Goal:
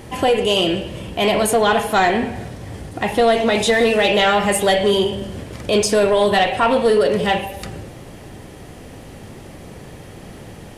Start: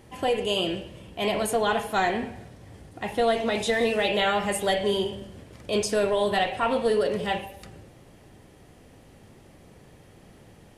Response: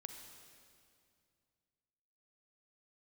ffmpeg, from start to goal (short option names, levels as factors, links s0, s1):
-filter_complex "[0:a]asplit=2[s0][s1];[s1]acompressor=threshold=0.0158:ratio=6,volume=1.06[s2];[s0][s2]amix=inputs=2:normalize=0,asoftclip=type=tanh:threshold=0.2,volume=2.51"